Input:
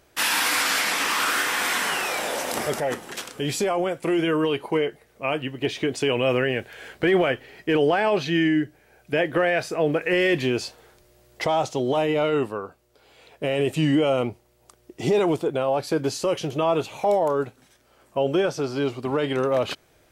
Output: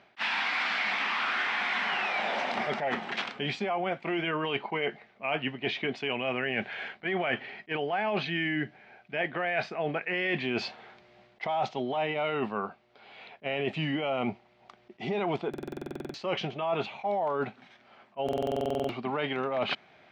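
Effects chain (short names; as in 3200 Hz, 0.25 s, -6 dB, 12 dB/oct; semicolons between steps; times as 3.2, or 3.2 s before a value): speaker cabinet 190–3900 Hz, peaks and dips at 210 Hz +7 dB, 310 Hz -9 dB, 490 Hz -9 dB, 750 Hz +5 dB, 2200 Hz +5 dB; reverse; compressor, threshold -31 dBFS, peak gain reduction 14 dB; reverse; stuck buffer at 15.49/18.24, samples 2048, times 13; attack slew limiter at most 580 dB/s; gain +3.5 dB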